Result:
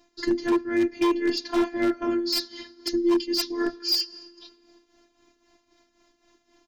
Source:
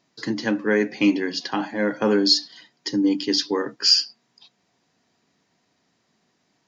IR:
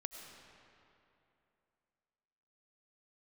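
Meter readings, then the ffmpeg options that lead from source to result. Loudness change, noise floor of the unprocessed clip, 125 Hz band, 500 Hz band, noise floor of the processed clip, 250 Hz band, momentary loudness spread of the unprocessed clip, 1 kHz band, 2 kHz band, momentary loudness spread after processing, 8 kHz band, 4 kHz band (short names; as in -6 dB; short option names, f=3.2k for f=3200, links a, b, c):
-4.0 dB, -70 dBFS, under -10 dB, -1.5 dB, -70 dBFS, -2.0 dB, 10 LU, -1.0 dB, -6.0 dB, 6 LU, n/a, -6.5 dB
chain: -filter_complex "[0:a]areverse,acompressor=threshold=-27dB:ratio=8,areverse,aecho=1:1:6.2:0.87,asplit=2[a][b];[1:a]atrim=start_sample=2205[c];[b][c]afir=irnorm=-1:irlink=0,volume=-9dB[d];[a][d]amix=inputs=2:normalize=0,afftfilt=real='hypot(re,im)*cos(PI*b)':imag='0':win_size=512:overlap=0.75,lowshelf=f=250:g=10.5,tremolo=f=3.8:d=0.67,aeval=exprs='0.0944*(abs(mod(val(0)/0.0944+3,4)-2)-1)':c=same,volume=5dB"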